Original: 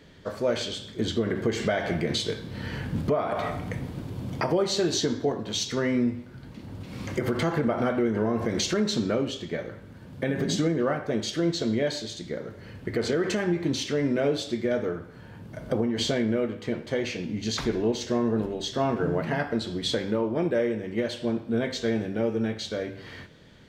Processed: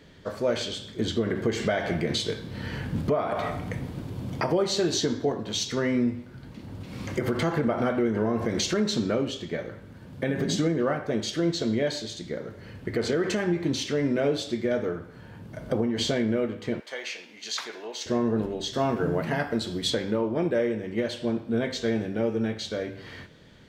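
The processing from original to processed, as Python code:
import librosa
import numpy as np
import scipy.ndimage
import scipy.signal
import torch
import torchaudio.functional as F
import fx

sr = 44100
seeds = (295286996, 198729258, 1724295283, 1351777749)

y = fx.highpass(x, sr, hz=870.0, slope=12, at=(16.8, 18.06))
y = fx.high_shelf(y, sr, hz=8600.0, db=11.0, at=(18.73, 19.9))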